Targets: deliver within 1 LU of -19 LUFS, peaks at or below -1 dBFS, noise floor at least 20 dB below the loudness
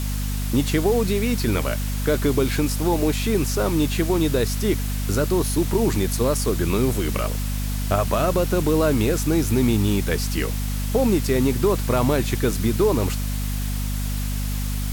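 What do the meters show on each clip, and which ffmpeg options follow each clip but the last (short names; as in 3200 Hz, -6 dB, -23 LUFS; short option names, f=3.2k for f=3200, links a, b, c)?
hum 50 Hz; harmonics up to 250 Hz; hum level -23 dBFS; noise floor -25 dBFS; noise floor target -42 dBFS; loudness -22.0 LUFS; peak -7.0 dBFS; loudness target -19.0 LUFS
-> -af "bandreject=f=50:t=h:w=6,bandreject=f=100:t=h:w=6,bandreject=f=150:t=h:w=6,bandreject=f=200:t=h:w=6,bandreject=f=250:t=h:w=6"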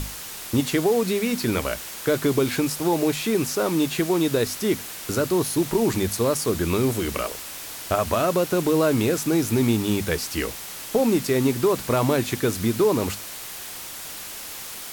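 hum none; noise floor -36 dBFS; noise floor target -44 dBFS
-> -af "afftdn=nr=8:nf=-36"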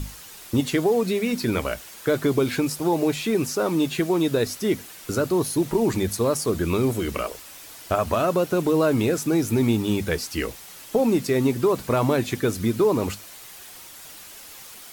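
noise floor -43 dBFS; noise floor target -44 dBFS
-> -af "afftdn=nr=6:nf=-43"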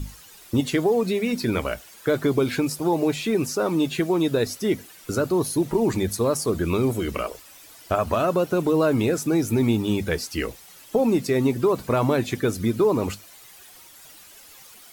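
noise floor -48 dBFS; loudness -23.5 LUFS; peak -9.0 dBFS; loudness target -19.0 LUFS
-> -af "volume=4.5dB"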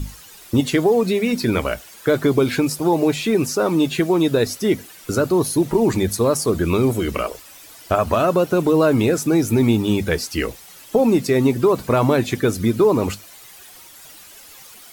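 loudness -19.0 LUFS; peak -4.5 dBFS; noise floor -43 dBFS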